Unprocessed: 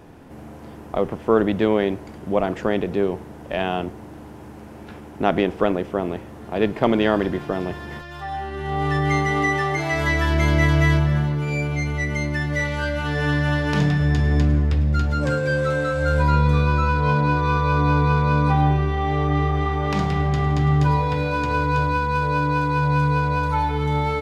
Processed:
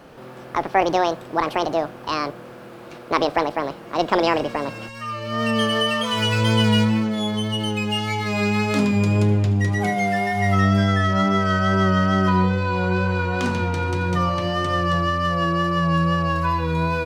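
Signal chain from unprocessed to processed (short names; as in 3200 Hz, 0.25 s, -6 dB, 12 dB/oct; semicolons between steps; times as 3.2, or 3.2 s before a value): speed glide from 173% -> 111%; notches 60/120/180 Hz; wow and flutter 24 cents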